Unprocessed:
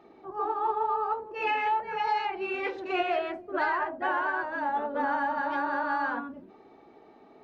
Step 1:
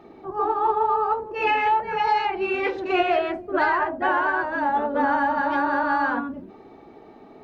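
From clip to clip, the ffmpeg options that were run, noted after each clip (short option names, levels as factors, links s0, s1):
-af "lowshelf=f=210:g=8.5,volume=2"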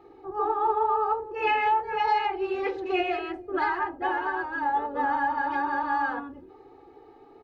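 -af "aecho=1:1:2.4:0.97,volume=0.376"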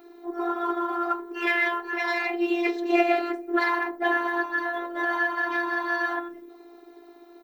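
-af "afftfilt=real='hypot(re,im)*cos(PI*b)':imag='0':win_size=512:overlap=0.75,aeval=exprs='0.178*(cos(1*acos(clip(val(0)/0.178,-1,1)))-cos(1*PI/2))+0.00631*(cos(2*acos(clip(val(0)/0.178,-1,1)))-cos(2*PI/2))':c=same,aemphasis=mode=production:type=bsi,volume=2.51"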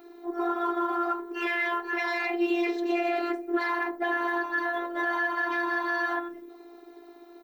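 -af "alimiter=limit=0.133:level=0:latency=1:release=58"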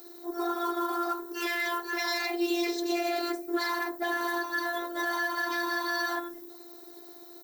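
-af "aexciter=amount=4.6:drive=8.1:freq=3900,volume=0.75"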